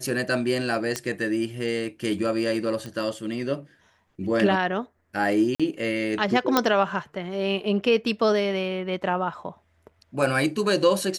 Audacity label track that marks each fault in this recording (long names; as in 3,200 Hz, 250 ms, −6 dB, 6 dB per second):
0.960000	0.960000	click −11 dBFS
2.860000	2.860000	click −21 dBFS
5.550000	5.600000	drop-out 46 ms
6.570000	6.570000	click −4 dBFS